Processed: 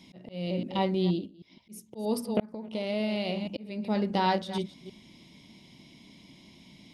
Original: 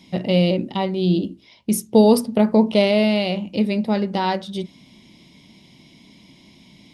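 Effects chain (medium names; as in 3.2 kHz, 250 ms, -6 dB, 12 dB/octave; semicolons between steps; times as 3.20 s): chunks repeated in reverse 158 ms, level -12.5 dB; 2.45–3.58 s: compression 6:1, threshold -22 dBFS, peak gain reduction 12 dB; slow attack 571 ms; 0.95–1.75 s: dip -17.5 dB, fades 0.37 s; trim -4.5 dB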